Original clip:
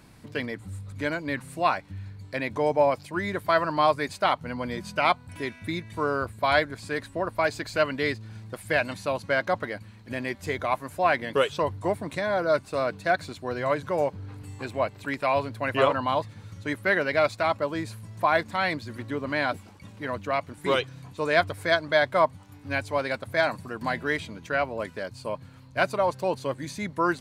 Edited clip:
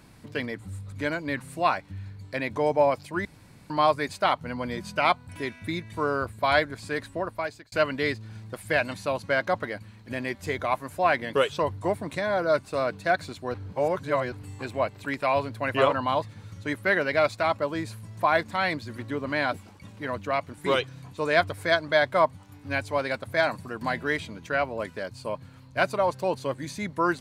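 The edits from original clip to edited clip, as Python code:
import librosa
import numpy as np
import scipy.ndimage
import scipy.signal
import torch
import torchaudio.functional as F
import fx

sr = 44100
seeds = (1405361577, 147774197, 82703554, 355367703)

y = fx.edit(x, sr, fx.room_tone_fill(start_s=3.25, length_s=0.45),
    fx.fade_out_span(start_s=7.12, length_s=0.6),
    fx.reverse_span(start_s=13.54, length_s=0.78), tone=tone)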